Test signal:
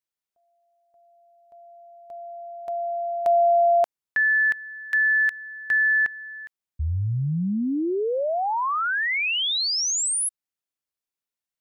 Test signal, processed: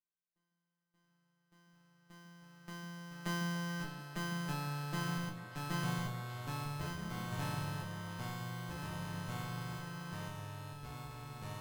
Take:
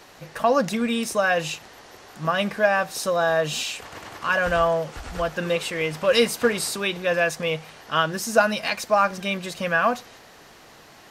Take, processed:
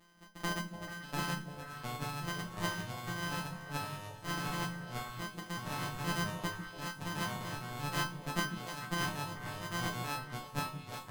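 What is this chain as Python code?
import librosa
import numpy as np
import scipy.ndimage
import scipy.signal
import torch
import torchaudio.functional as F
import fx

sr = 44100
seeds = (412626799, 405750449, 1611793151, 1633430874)

y = np.r_[np.sort(x[:len(x) // 256 * 256].reshape(-1, 256), axis=1).ravel(), x[len(x) // 256 * 256:]]
y = fx.dereverb_blind(y, sr, rt60_s=1.8)
y = fx.resonator_bank(y, sr, root=56, chord='fifth', decay_s=0.27)
y = fx.echo_stepped(y, sr, ms=146, hz=220.0, octaves=1.4, feedback_pct=70, wet_db=-4.0)
y = fx.echo_pitch(y, sr, ms=610, semitones=-3, count=3, db_per_echo=-3.0)
y = F.gain(torch.from_numpy(y), 3.0).numpy()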